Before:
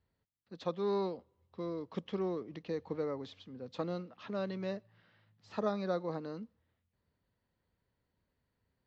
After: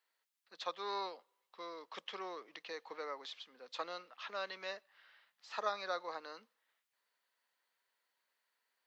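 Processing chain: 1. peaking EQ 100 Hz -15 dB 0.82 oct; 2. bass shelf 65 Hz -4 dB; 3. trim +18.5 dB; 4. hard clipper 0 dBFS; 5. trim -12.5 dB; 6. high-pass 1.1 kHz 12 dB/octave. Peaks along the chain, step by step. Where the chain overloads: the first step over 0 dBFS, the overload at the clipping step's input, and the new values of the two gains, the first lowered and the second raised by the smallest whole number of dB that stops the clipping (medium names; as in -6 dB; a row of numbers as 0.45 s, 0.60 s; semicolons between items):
-21.5 dBFS, -21.5 dBFS, -3.0 dBFS, -3.0 dBFS, -15.5 dBFS, -22.5 dBFS; nothing clips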